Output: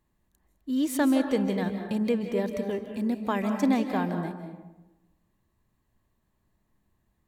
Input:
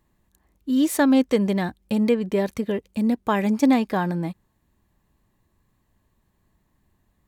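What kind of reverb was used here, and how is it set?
digital reverb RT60 1.1 s, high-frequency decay 0.45×, pre-delay 0.12 s, DRR 5.5 dB; gain -6.5 dB

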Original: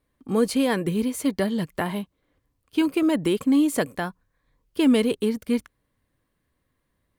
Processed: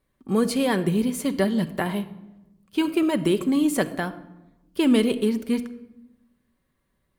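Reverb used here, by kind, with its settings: shoebox room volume 3800 m³, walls furnished, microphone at 1.1 m

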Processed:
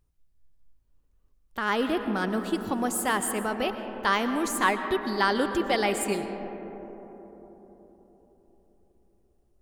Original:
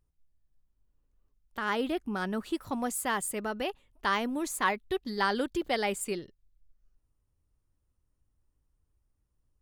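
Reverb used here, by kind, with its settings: digital reverb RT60 4.4 s, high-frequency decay 0.25×, pre-delay 75 ms, DRR 7.5 dB; gain +4 dB

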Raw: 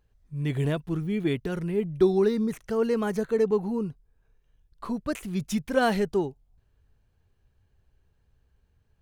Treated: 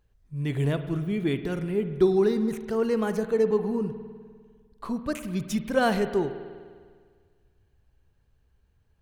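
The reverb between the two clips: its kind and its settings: spring tank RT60 1.8 s, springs 50 ms, chirp 25 ms, DRR 10 dB

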